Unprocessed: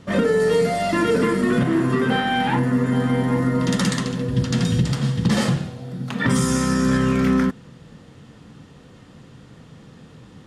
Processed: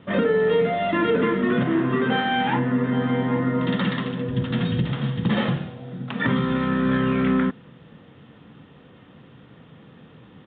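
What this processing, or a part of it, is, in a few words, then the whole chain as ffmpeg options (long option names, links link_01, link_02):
Bluetooth headset: -af "highpass=frequency=140:poles=1,aresample=8000,aresample=44100,volume=-1dB" -ar 16000 -c:a sbc -b:a 64k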